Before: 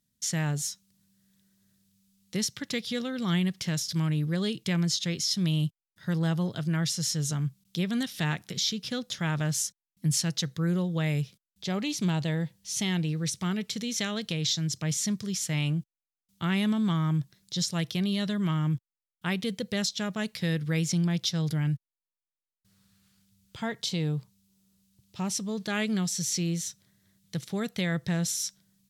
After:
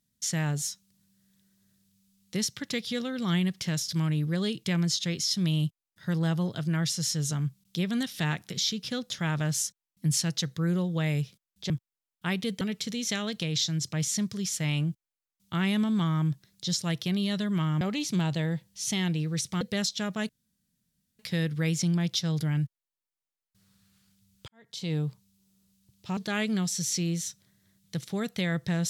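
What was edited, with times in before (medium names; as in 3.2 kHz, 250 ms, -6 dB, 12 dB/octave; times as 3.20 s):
11.70–13.50 s: swap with 18.70–19.61 s
20.29 s: insert room tone 0.90 s
23.58–24.03 s: fade in quadratic
25.27–25.57 s: delete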